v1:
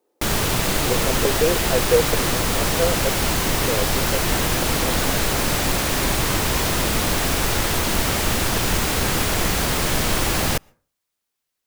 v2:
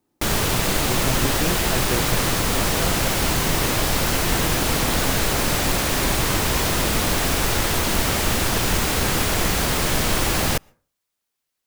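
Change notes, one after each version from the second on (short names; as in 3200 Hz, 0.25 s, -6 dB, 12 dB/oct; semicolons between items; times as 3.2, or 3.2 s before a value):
speech: remove resonant high-pass 470 Hz, resonance Q 5.6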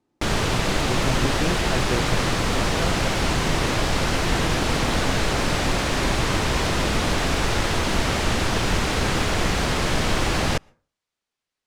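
background: add air absorption 72 m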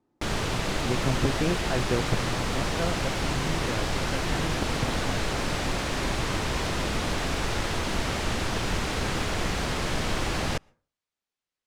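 background -6.0 dB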